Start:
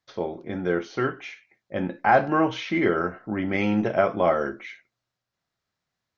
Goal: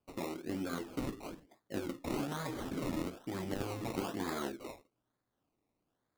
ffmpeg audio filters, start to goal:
-af "afftfilt=real='re*lt(hypot(re,im),0.282)':imag='im*lt(hypot(re,im),0.282)':win_size=1024:overlap=0.75,acompressor=threshold=-51dB:ratio=1.5,acrusher=samples=22:mix=1:aa=0.000001:lfo=1:lforange=13.2:lforate=1.1,equalizer=f=290:w=2.1:g=8,volume=-1.5dB"

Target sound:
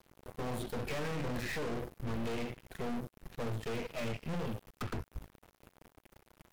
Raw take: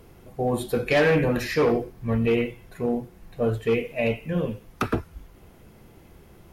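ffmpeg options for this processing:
-filter_complex "[0:a]acrossover=split=210|3000[a][b][c];[a]acompressor=threshold=-29dB:ratio=4[d];[b]acompressor=threshold=-32dB:ratio=4[e];[c]acompressor=threshold=-52dB:ratio=4[f];[d][e][f]amix=inputs=3:normalize=0,aeval=exprs='sgn(val(0))*max(abs(val(0))-0.00562,0)':c=same,aeval=exprs='(tanh(141*val(0)+0.7)-tanh(0.7))/141':c=same,volume=7.5dB"

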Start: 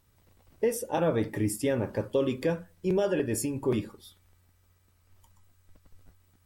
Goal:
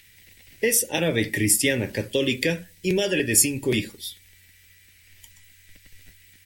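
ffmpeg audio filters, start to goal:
-filter_complex "[0:a]firequalizer=gain_entry='entry(330,0);entry(1200,-12);entry(1900,13)':delay=0.05:min_phase=1,acrossover=split=320|1500|2400[a][b][c][d];[c]acompressor=mode=upward:threshold=-53dB:ratio=2.5[e];[a][b][e][d]amix=inputs=4:normalize=0,volume=4dB"

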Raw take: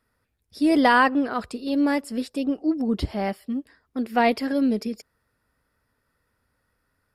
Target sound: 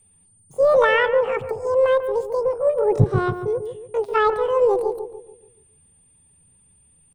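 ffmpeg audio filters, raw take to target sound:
-filter_complex "[0:a]aeval=exprs='val(0)+0.00178*sin(2*PI*4900*n/s)':c=same,acrossover=split=1400[a][b];[a]aemphasis=mode=reproduction:type=bsi[c];[b]acompressor=threshold=-52dB:ratio=4[d];[c][d]amix=inputs=2:normalize=0,asetrate=80880,aresample=44100,atempo=0.545254,asplit=2[e][f];[f]adelay=143,lowpass=f=820:p=1,volume=-6.5dB,asplit=2[g][h];[h]adelay=143,lowpass=f=820:p=1,volume=0.48,asplit=2[i][j];[j]adelay=143,lowpass=f=820:p=1,volume=0.48,asplit=2[k][l];[l]adelay=143,lowpass=f=820:p=1,volume=0.48,asplit=2[m][n];[n]adelay=143,lowpass=f=820:p=1,volume=0.48,asplit=2[o][p];[p]adelay=143,lowpass=f=820:p=1,volume=0.48[q];[e][g][i][k][m][o][q]amix=inputs=7:normalize=0"

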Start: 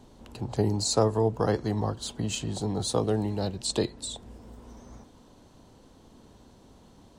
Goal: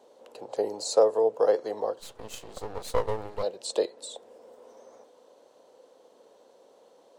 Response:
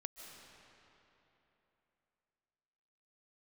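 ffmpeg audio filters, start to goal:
-filter_complex "[0:a]highpass=f=510:t=q:w=4.9,asplit=3[a][b][c];[a]afade=t=out:st=1.99:d=0.02[d];[b]aeval=exprs='max(val(0),0)':c=same,afade=t=in:st=1.99:d=0.02,afade=t=out:st=3.42:d=0.02[e];[c]afade=t=in:st=3.42:d=0.02[f];[d][e][f]amix=inputs=3:normalize=0,volume=-5dB"

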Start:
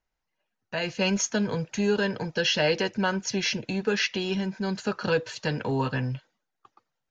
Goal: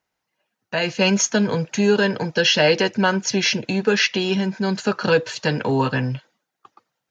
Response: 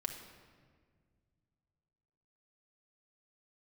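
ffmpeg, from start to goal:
-af "highpass=120,volume=7.5dB"

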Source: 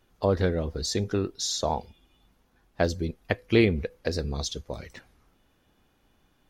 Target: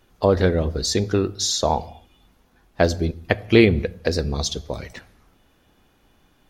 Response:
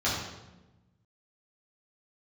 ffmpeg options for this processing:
-filter_complex "[0:a]asplit=2[a][b];[b]equalizer=f=690:w=5.6:g=6[c];[1:a]atrim=start_sample=2205,afade=t=out:st=0.33:d=0.01,atrim=end_sample=14994[d];[c][d]afir=irnorm=-1:irlink=0,volume=-29.5dB[e];[a][e]amix=inputs=2:normalize=0,volume=6.5dB"

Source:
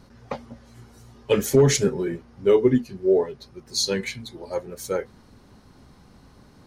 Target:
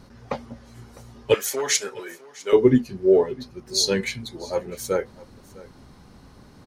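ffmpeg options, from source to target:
-filter_complex "[0:a]asettb=1/sr,asplit=3[a][b][c];[a]atrim=end=1.344[d];[b]atrim=start=1.34:end=2.53,asetpts=PTS-STARTPTS,afade=t=in:d=0.004:c=qsin,afade=t=out:st=1.186:d=0.004:c=qsin,highpass=880[e];[c]atrim=start=2.526[f];[d][e]acrossfade=d=0.004:c1=hsin:c2=qsin[g];[g][f]acrossfade=d=0.004:c1=qsin:c2=hsin,aecho=1:1:654:0.0891,volume=2.5dB"

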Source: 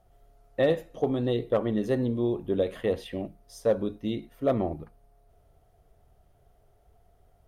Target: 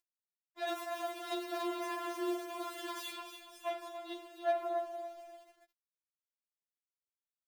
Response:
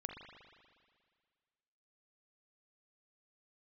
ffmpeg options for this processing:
-filter_complex "[0:a]asettb=1/sr,asplit=3[a][b][c];[a]atrim=end=0.674[d];[b]atrim=start=0.67:end=3.17,asetpts=PTS-STARTPTS,afade=t=in:d=0.004:c=qsin,afade=t=out:st=2.496:d=0.004:c=qsin,aeval=exprs='val(0)+0.5*0.0299*sgn(val(0))':c=same[e];[c]atrim=start=3.166[f];[d][e]acrossfade=d=0.004:c1=hsin:c2=qsin[g];[g][f]acrossfade=d=0.004:c1=qsin:c2=hsin,aecho=1:1:286|572|858|1144|1430:0.447|0.205|0.0945|0.0435|0.02[h];[1:a]atrim=start_sample=2205[i];[h][i]afir=irnorm=-1:irlink=0,acompressor=mode=upward:threshold=-46dB:ratio=2.5,aeval=exprs='0.2*(cos(1*acos(clip(val(0)/0.2,-1,1)))-cos(1*PI/2))+0.0224*(cos(3*acos(clip(val(0)/0.2,-1,1)))-cos(3*PI/2))+0.00794*(cos(6*acos(clip(val(0)/0.2,-1,1)))-cos(6*PI/2))+0.01*(cos(7*acos(clip(val(0)/0.2,-1,1)))-cos(7*PI/2))':c=same,highpass=f=440:w=0.5412,highpass=f=440:w=1.3066,highshelf=f=5.7k:g=4,aeval=exprs='val(0)*gte(abs(val(0)),0.00211)':c=same,afftfilt=real='re*4*eq(mod(b,16),0)':imag='im*4*eq(mod(b,16),0)':win_size=2048:overlap=0.75"

